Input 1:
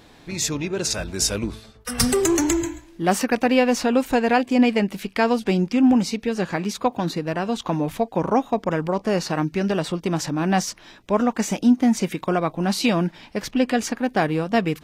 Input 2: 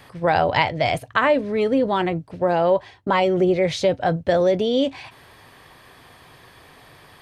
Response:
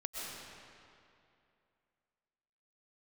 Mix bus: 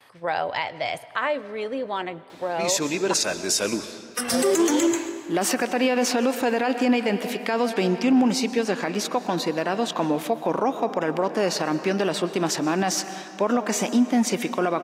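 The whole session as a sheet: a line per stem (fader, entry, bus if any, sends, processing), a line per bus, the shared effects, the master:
+2.0 dB, 2.30 s, send -12 dB, high-pass 280 Hz 12 dB/octave
-5.0 dB, 0.00 s, muted 3.14–4.30 s, send -19 dB, gate with hold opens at -41 dBFS; high-pass 620 Hz 6 dB/octave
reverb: on, RT60 2.6 s, pre-delay 85 ms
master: peak limiter -12 dBFS, peak gain reduction 11 dB

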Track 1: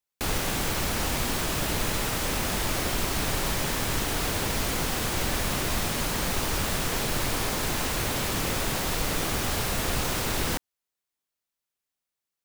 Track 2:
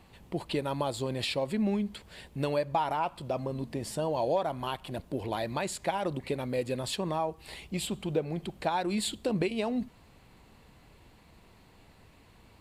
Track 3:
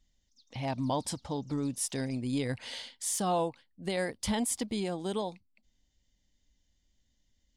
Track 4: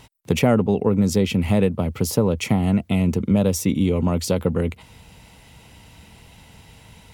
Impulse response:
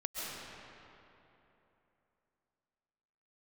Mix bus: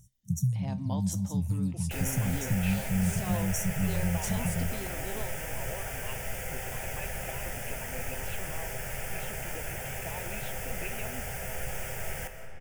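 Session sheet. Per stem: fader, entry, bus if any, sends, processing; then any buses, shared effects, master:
-4.0 dB, 1.70 s, send -8 dB, static phaser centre 1.1 kHz, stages 6
+1.0 dB, 1.40 s, no send, four-pole ladder low-pass 2.8 kHz, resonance 75%
-4.0 dB, 0.00 s, send -20.5 dB, none
-1.0 dB, 0.00 s, no send, FFT band-reject 200–5500 Hz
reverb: on, RT60 3.2 s, pre-delay 95 ms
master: feedback comb 130 Hz, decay 0.21 s, harmonics all, mix 60%

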